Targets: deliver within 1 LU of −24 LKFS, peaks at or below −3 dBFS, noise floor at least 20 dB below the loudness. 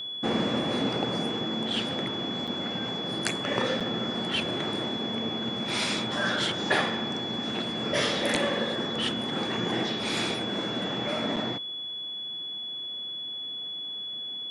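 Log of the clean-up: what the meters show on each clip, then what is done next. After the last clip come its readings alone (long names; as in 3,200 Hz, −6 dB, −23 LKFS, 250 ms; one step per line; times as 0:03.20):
number of dropouts 3; longest dropout 6.1 ms; interfering tone 3,400 Hz; level of the tone −33 dBFS; integrated loudness −29.0 LKFS; sample peak −5.0 dBFS; target loudness −24.0 LKFS
→ repair the gap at 0:02.47/0:03.80/0:11.36, 6.1 ms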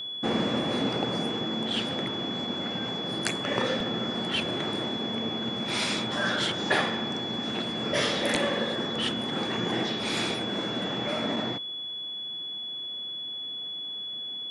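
number of dropouts 0; interfering tone 3,400 Hz; level of the tone −33 dBFS
→ notch filter 3,400 Hz, Q 30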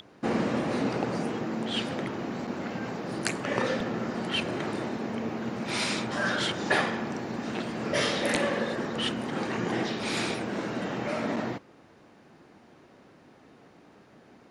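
interfering tone none found; integrated loudness −30.0 LKFS; sample peak −5.0 dBFS; target loudness −24.0 LKFS
→ level +6 dB
brickwall limiter −3 dBFS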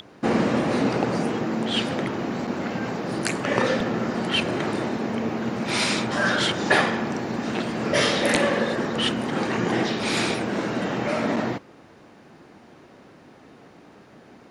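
integrated loudness −24.0 LKFS; sample peak −3.0 dBFS; background noise floor −50 dBFS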